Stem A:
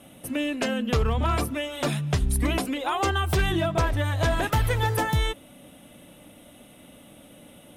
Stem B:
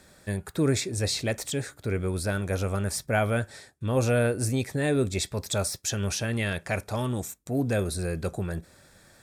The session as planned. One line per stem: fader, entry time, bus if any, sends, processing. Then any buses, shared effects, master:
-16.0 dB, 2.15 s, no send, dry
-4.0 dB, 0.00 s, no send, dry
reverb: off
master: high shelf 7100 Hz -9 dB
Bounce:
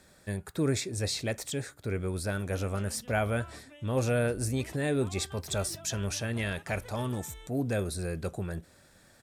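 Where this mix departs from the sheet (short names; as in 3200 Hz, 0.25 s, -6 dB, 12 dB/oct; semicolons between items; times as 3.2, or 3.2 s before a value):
stem A -16.0 dB -> -23.5 dB; master: missing high shelf 7100 Hz -9 dB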